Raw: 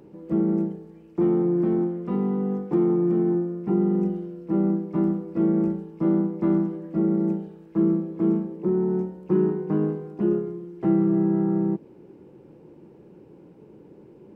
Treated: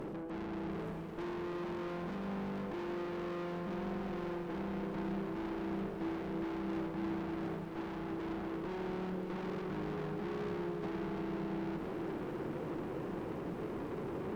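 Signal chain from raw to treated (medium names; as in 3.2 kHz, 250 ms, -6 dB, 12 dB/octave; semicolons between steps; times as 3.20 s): high-pass 76 Hz 12 dB/octave; reverse; compression 8:1, threshold -35 dBFS, peak gain reduction 18 dB; reverse; peak limiter -36 dBFS, peak gain reduction 9.5 dB; valve stage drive 55 dB, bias 0.6; on a send: two-band feedback delay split 570 Hz, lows 183 ms, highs 556 ms, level -15 dB; on the sum: bit-crushed delay 340 ms, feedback 80%, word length 14-bit, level -8 dB; trim +15.5 dB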